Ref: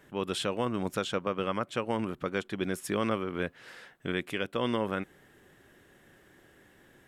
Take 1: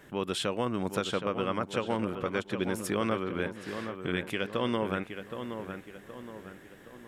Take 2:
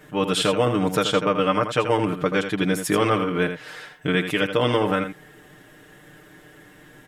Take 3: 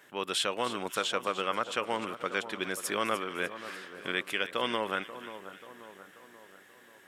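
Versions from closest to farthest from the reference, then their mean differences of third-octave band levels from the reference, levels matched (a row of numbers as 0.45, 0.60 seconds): 2, 1, 3; 3.0, 5.0, 7.5 decibels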